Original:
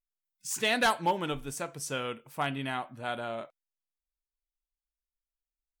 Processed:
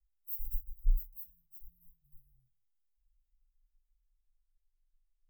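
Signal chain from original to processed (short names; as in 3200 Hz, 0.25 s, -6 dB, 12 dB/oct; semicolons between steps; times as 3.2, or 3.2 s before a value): speed glide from 167% -> 52%; overloaded stage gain 23.5 dB; inverse Chebyshev band-stop 280–5200 Hz, stop band 80 dB; reverb RT60 0.20 s, pre-delay 4 ms, DRR -6 dB; gain +2 dB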